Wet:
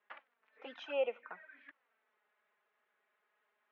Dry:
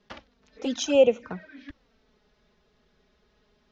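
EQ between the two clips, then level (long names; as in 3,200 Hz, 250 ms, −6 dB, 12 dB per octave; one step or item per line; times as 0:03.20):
high-pass filter 1,000 Hz 12 dB per octave
low-pass filter 2,300 Hz 24 dB per octave
−4.5 dB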